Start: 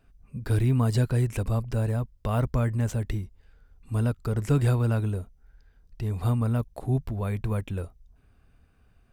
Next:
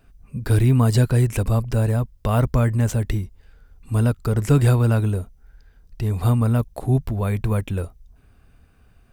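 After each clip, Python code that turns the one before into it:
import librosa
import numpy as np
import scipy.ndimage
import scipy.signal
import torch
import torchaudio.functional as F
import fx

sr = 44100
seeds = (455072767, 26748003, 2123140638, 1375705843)

y = fx.high_shelf(x, sr, hz=8200.0, db=4.5)
y = F.gain(torch.from_numpy(y), 6.5).numpy()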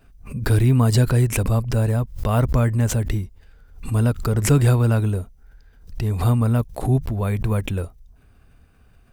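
y = fx.pre_swell(x, sr, db_per_s=120.0)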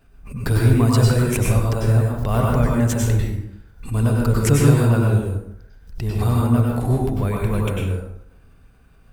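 y = fx.rev_plate(x, sr, seeds[0], rt60_s=0.75, hf_ratio=0.65, predelay_ms=85, drr_db=-2.0)
y = F.gain(torch.from_numpy(y), -2.0).numpy()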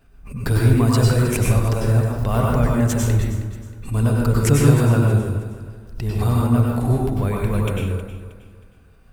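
y = fx.echo_feedback(x, sr, ms=316, feedback_pct=35, wet_db=-14)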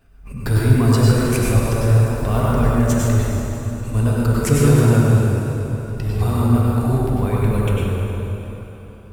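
y = fx.rev_plate(x, sr, seeds[1], rt60_s=3.7, hf_ratio=0.8, predelay_ms=0, drr_db=1.0)
y = F.gain(torch.from_numpy(y), -1.0).numpy()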